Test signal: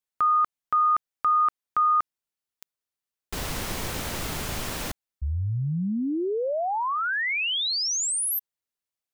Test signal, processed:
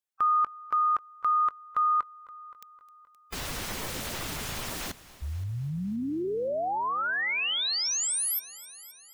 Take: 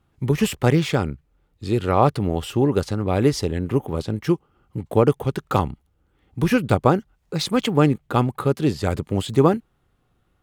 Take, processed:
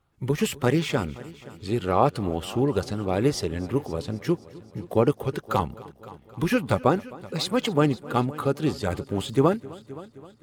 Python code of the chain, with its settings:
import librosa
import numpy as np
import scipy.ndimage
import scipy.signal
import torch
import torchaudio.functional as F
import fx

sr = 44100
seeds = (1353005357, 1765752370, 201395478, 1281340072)

y = fx.spec_quant(x, sr, step_db=15)
y = fx.low_shelf(y, sr, hz=260.0, db=-4.5)
y = fx.echo_heads(y, sr, ms=261, heads='first and second', feedback_pct=49, wet_db=-21.5)
y = y * 10.0 ** (-2.0 / 20.0)